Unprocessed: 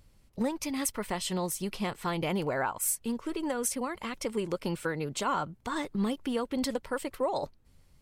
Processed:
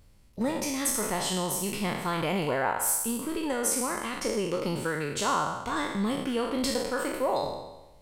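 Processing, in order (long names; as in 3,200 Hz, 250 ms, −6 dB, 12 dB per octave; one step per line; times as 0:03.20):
peak hold with a decay on every bin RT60 1.03 s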